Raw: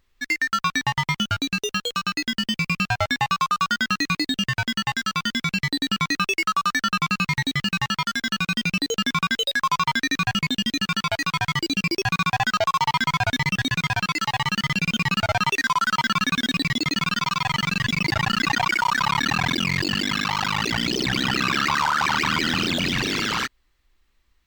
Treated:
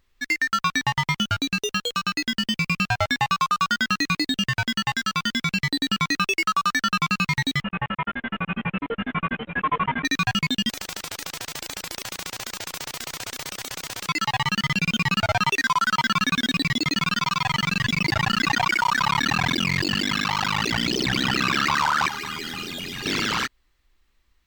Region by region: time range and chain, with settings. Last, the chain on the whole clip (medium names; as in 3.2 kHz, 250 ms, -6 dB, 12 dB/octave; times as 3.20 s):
7.61–10.05 s: CVSD coder 16 kbps + distance through air 55 m + delay 834 ms -7.5 dB
10.69–14.09 s: treble shelf 9.6 kHz -6 dB + spectrum-flattening compressor 10:1
22.08–23.06 s: companding laws mixed up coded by mu + peaking EQ 13 kHz +9.5 dB 1 oct + feedback comb 410 Hz, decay 0.16 s, mix 80%
whole clip: none